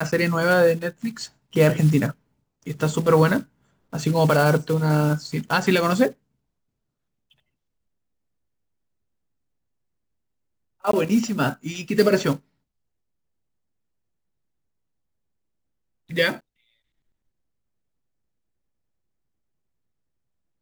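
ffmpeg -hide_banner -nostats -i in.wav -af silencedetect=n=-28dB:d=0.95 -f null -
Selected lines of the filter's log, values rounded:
silence_start: 6.10
silence_end: 10.85 | silence_duration: 4.75
silence_start: 12.36
silence_end: 16.11 | silence_duration: 3.75
silence_start: 16.35
silence_end: 20.62 | silence_duration: 4.27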